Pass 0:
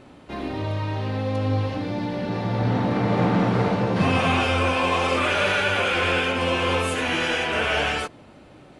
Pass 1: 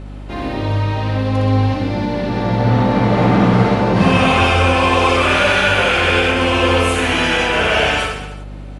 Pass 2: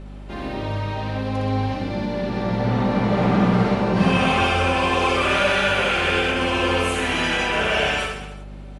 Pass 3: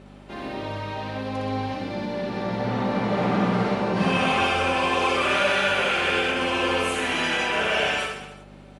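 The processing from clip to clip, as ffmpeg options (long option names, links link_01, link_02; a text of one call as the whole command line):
ffmpeg -i in.wav -af "aecho=1:1:60|126|198.6|278.5|366.3:0.631|0.398|0.251|0.158|0.1,aeval=exprs='val(0)+0.0178*(sin(2*PI*50*n/s)+sin(2*PI*2*50*n/s)/2+sin(2*PI*3*50*n/s)/3+sin(2*PI*4*50*n/s)/4+sin(2*PI*5*50*n/s)/5)':channel_layout=same,volume=5.5dB" out.wav
ffmpeg -i in.wav -af "aecho=1:1:5.1:0.33,volume=-6dB" out.wav
ffmpeg -i in.wav -af "highpass=frequency=210:poles=1,volume=-2dB" out.wav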